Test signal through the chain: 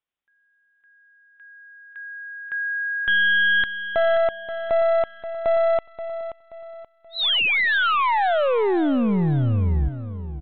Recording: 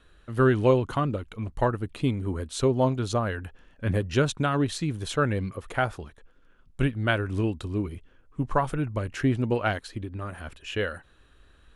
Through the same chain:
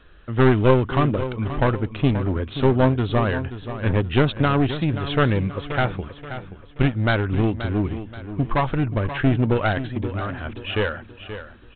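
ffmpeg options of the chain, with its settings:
-af "aresample=8000,aeval=exprs='clip(val(0),-1,0.0447)':c=same,aresample=44100,aecho=1:1:529|1058|1587|2116:0.266|0.104|0.0405|0.0158,volume=7dB"

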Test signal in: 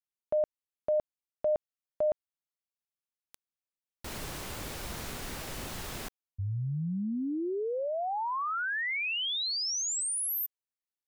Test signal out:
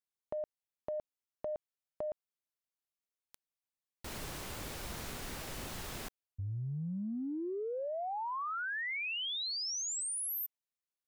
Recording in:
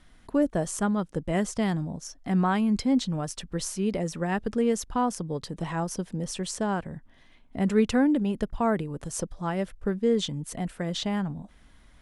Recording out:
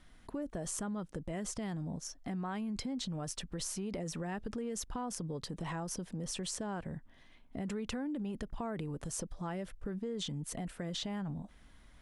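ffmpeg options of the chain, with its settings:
-af "acompressor=threshold=-32dB:ratio=10:attack=4.2:release=56:knee=1:detection=peak,volume=-3.5dB"

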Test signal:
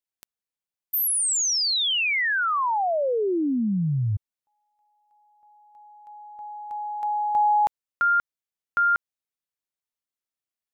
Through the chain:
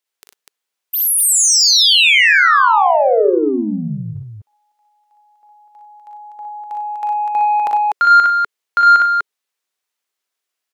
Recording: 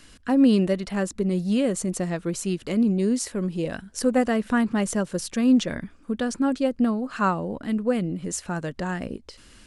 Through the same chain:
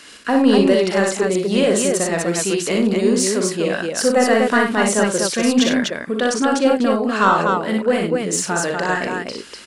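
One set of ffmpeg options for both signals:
-filter_complex "[0:a]equalizer=f=420:w=3.9:g=4.5,acontrast=65,highpass=f=210:p=1,asplit=2[a][b];[b]highpass=f=720:p=1,volume=10dB,asoftclip=type=tanh:threshold=-4dB[c];[a][c]amix=inputs=2:normalize=0,lowpass=f=7.4k:p=1,volume=-6dB,aecho=1:1:41|60|95|100|247:0.422|0.631|0.251|0.141|0.668,volume=-1dB"

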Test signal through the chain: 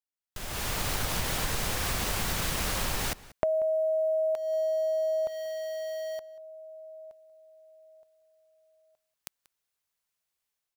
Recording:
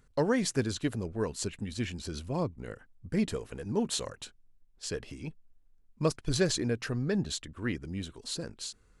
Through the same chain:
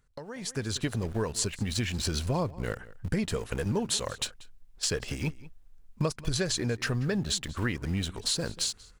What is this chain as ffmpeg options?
-filter_complex "[0:a]equalizer=f=290:t=o:w=1.4:g=-6,asplit=2[a][b];[b]aeval=exprs='val(0)*gte(abs(val(0)),0.00708)':c=same,volume=-7dB[c];[a][c]amix=inputs=2:normalize=0,acompressor=threshold=-36dB:ratio=10,asplit=2[d][e];[e]adelay=186.6,volume=-19dB,highshelf=f=4k:g=-4.2[f];[d][f]amix=inputs=2:normalize=0,dynaudnorm=f=150:g=7:m=15.5dB,volume=-5dB"

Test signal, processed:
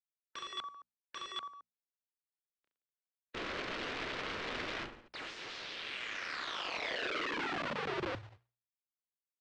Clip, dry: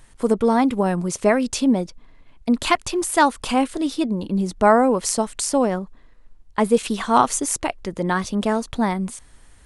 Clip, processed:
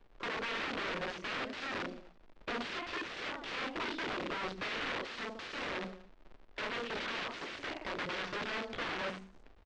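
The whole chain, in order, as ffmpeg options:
-filter_complex "[0:a]afftdn=nr=29:nf=-41,acompressor=threshold=-26dB:ratio=6,bandreject=f=60:t=h:w=6,bandreject=f=120:t=h:w=6,bandreject=f=180:t=h:w=6,bandreject=f=240:t=h:w=6,asplit=2[a][b];[b]aecho=0:1:30|67.5|114.4|173|246.2:0.631|0.398|0.251|0.158|0.1[c];[a][c]amix=inputs=2:normalize=0,aeval=exprs='(mod(22.4*val(0)+1,2)-1)/22.4':c=same,equalizer=f=820:w=1.6:g=-7.5,adynamicsmooth=sensitivity=3.5:basefreq=2.8k,acrusher=bits=3:mode=log:mix=0:aa=0.000001,lowpass=f=8.6k:w=0.5412,lowpass=f=8.6k:w=1.3066,acrossover=split=280 4700:gain=0.251 1 0.0794[d][e][f];[d][e][f]amix=inputs=3:normalize=0,volume=-1dB"

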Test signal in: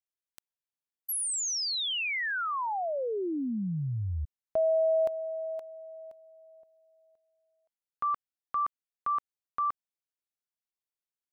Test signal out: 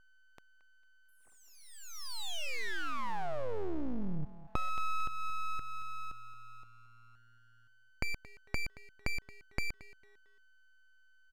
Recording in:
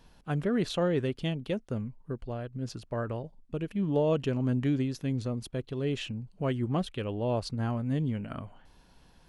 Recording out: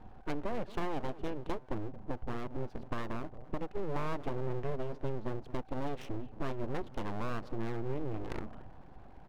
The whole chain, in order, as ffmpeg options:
-af "acompressor=threshold=-40dB:ratio=4:attack=18:release=262:detection=rms,aecho=1:1:225|450|675:0.158|0.046|0.0133,adynamicsmooth=sensitivity=5.5:basefreq=990,aeval=exprs='val(0)+0.000398*sin(2*PI*760*n/s)':c=same,aeval=exprs='abs(val(0))':c=same,volume=8.5dB"

